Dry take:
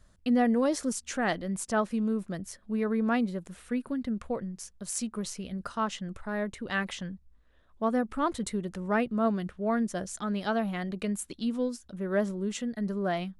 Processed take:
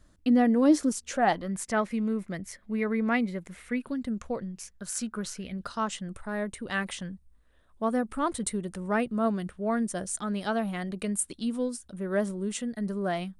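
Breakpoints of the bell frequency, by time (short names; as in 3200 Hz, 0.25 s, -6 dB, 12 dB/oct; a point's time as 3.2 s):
bell +12.5 dB 0.32 oct
0.91 s 300 Hz
1.66 s 2100 Hz
3.78 s 2100 Hz
4.07 s 9300 Hz
4.83 s 1500 Hz
5.36 s 1500 Hz
5.96 s 9000 Hz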